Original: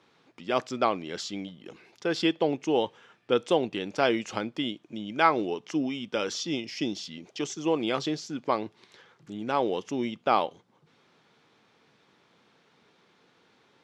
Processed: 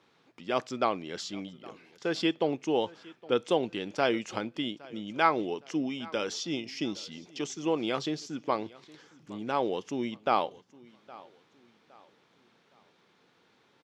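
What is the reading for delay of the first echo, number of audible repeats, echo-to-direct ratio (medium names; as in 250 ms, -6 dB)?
814 ms, 2, -21.5 dB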